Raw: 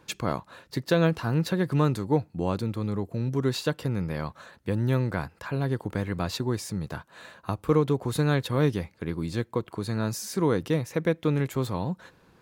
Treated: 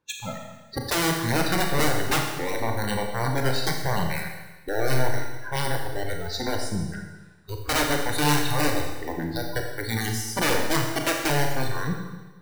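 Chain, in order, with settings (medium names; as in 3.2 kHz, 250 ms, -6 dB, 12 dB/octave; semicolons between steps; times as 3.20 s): integer overflow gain 20.5 dB; spectral noise reduction 23 dB; Schroeder reverb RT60 1.2 s, combs from 27 ms, DRR 2 dB; trim +2.5 dB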